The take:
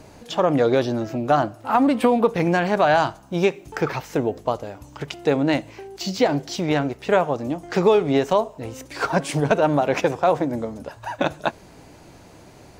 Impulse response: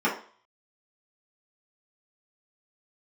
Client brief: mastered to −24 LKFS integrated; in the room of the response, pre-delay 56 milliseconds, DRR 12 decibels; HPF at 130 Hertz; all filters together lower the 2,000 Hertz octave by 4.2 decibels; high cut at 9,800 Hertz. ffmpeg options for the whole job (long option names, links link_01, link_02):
-filter_complex "[0:a]highpass=130,lowpass=9800,equalizer=frequency=2000:width_type=o:gain=-6,asplit=2[link_01][link_02];[1:a]atrim=start_sample=2205,adelay=56[link_03];[link_02][link_03]afir=irnorm=-1:irlink=0,volume=-26dB[link_04];[link_01][link_04]amix=inputs=2:normalize=0,volume=-2dB"